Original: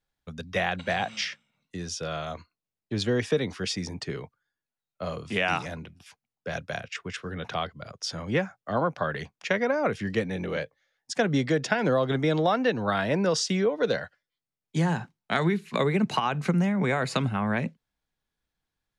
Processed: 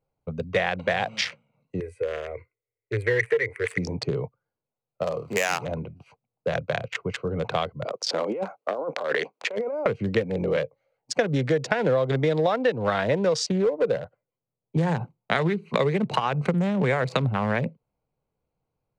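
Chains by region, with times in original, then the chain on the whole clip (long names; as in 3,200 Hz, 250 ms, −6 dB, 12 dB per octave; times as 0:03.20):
0:01.80–0:03.78: drawn EQ curve 120 Hz 0 dB, 170 Hz −29 dB, 440 Hz −1 dB, 700 Hz −19 dB, 1,300 Hz −19 dB, 2,000 Hz +9 dB, 2,900 Hz −21 dB, 6,000 Hz −28 dB, 8,700 Hz +5 dB + mid-hump overdrive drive 13 dB, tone 5,900 Hz, clips at −14 dBFS
0:05.03–0:05.62: running median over 15 samples + spectral tilt +3 dB per octave
0:07.85–0:09.86: high-pass filter 280 Hz 24 dB per octave + compressor whose output falls as the input rises −35 dBFS
0:13.49–0:14.78: low-pass filter 1,500 Hz 6 dB per octave + hard clipping −20 dBFS
whole clip: adaptive Wiener filter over 25 samples; octave-band graphic EQ 125/500/1,000/2,000/4,000/8,000 Hz +11/+12/+5/+9/+6/+7 dB; downward compressor 3 to 1, threshold −22 dBFS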